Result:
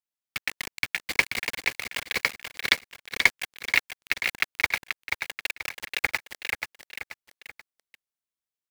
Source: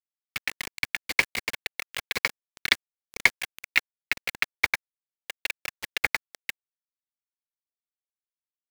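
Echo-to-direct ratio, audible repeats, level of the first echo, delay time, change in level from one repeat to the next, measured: -5.5 dB, 3, -6.0 dB, 0.483 s, -8.0 dB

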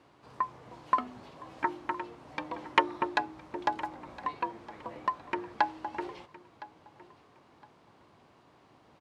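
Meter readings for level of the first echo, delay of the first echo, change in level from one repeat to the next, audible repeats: -19.0 dB, 1.013 s, -12.5 dB, 2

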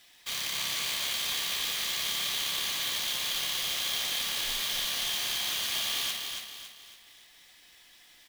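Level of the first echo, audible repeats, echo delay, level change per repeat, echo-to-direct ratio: -5.0 dB, 4, 0.278 s, -7.5 dB, -4.0 dB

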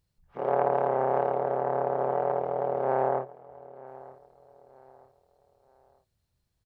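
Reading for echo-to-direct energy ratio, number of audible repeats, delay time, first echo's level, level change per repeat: -19.5 dB, 2, 0.933 s, -20.0 dB, -8.5 dB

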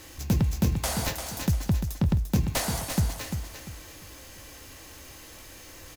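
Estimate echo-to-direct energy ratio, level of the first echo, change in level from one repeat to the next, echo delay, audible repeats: -7.0 dB, -7.5 dB, -10.0 dB, 0.346 s, 3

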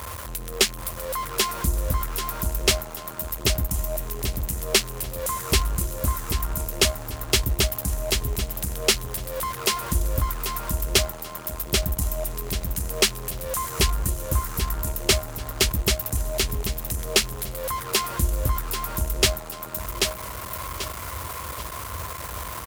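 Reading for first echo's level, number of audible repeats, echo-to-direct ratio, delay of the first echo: -3.5 dB, 4, -3.0 dB, 0.787 s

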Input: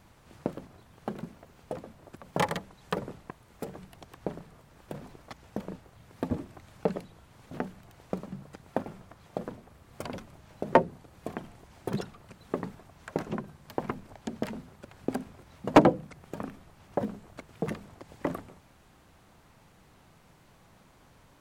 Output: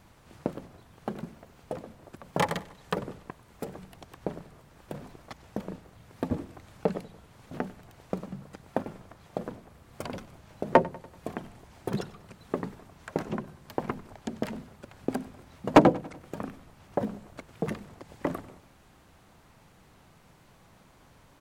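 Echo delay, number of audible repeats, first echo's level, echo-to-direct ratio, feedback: 96 ms, 3, -20.5 dB, -19.0 dB, 51%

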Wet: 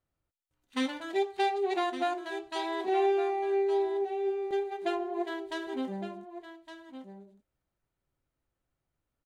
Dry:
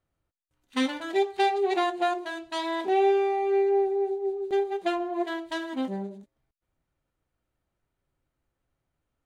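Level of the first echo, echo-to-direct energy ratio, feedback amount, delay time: -11.0 dB, -11.0 dB, no steady repeat, 1.163 s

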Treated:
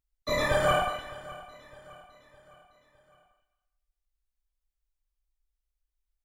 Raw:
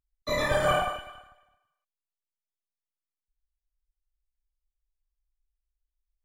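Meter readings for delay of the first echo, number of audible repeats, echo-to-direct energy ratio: 0.609 s, 3, -18.0 dB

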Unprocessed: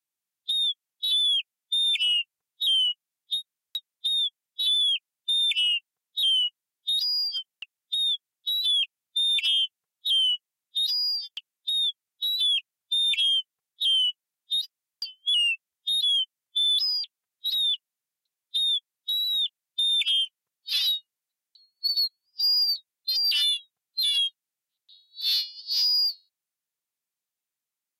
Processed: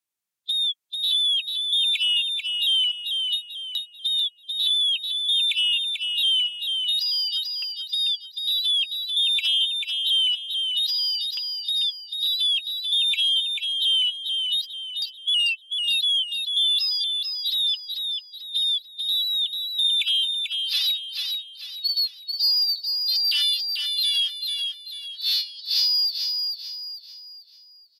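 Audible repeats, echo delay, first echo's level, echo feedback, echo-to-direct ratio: 4, 0.441 s, -5.0 dB, 39%, -4.5 dB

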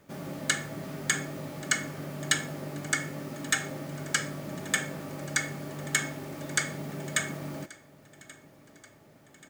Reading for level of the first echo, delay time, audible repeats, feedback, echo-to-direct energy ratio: -21.5 dB, 1.132 s, 3, 52%, -20.0 dB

